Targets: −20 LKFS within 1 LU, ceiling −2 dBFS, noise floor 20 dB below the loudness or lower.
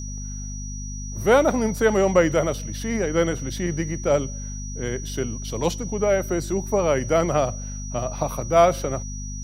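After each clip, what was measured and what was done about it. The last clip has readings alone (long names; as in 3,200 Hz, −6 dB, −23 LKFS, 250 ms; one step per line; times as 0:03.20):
mains hum 50 Hz; hum harmonics up to 250 Hz; level of the hum −30 dBFS; interfering tone 5,800 Hz; level of the tone −37 dBFS; integrated loudness −23.5 LKFS; sample peak −4.5 dBFS; target loudness −20.0 LKFS
→ mains-hum notches 50/100/150/200/250 Hz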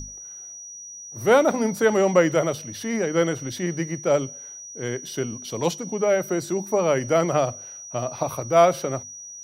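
mains hum none found; interfering tone 5,800 Hz; level of the tone −37 dBFS
→ notch filter 5,800 Hz, Q 30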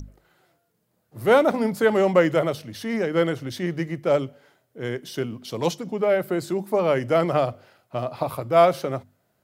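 interfering tone none found; integrated loudness −23.0 LKFS; sample peak −4.0 dBFS; target loudness −20.0 LKFS
→ level +3 dB
brickwall limiter −2 dBFS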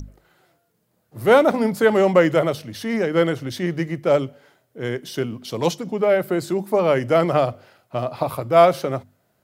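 integrated loudness −20.0 LKFS; sample peak −2.0 dBFS; background noise floor −68 dBFS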